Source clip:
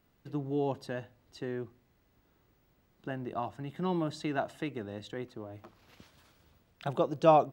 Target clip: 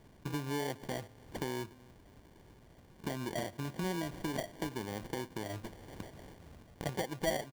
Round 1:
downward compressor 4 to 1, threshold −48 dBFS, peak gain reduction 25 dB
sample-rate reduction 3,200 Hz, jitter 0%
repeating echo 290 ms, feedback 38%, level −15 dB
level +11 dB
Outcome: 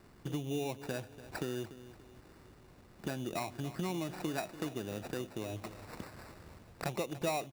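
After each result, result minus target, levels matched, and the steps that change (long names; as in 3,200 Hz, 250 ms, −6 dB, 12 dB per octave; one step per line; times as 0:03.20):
echo-to-direct +9.5 dB; sample-rate reduction: distortion −9 dB
change: repeating echo 290 ms, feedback 38%, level −24.5 dB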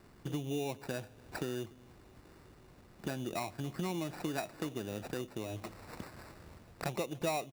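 sample-rate reduction: distortion −9 dB
change: sample-rate reduction 1,300 Hz, jitter 0%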